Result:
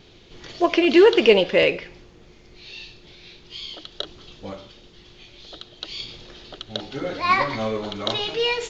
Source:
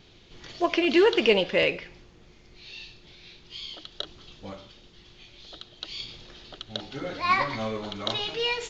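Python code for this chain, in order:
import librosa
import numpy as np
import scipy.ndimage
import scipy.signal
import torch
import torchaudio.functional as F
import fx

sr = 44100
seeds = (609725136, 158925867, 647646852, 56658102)

y = fx.peak_eq(x, sr, hz=430.0, db=3.5, octaves=1.2)
y = F.gain(torch.from_numpy(y), 3.5).numpy()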